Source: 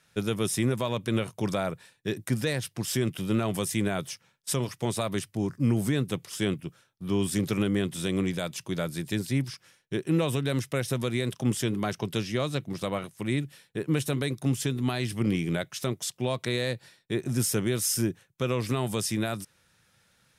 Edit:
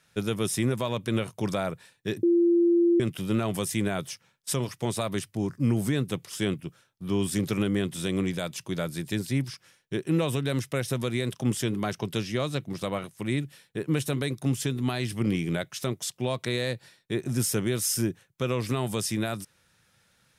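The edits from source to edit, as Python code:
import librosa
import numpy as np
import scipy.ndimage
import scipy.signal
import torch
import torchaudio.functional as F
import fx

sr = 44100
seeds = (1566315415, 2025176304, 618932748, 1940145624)

y = fx.edit(x, sr, fx.bleep(start_s=2.23, length_s=0.77, hz=343.0, db=-17.5), tone=tone)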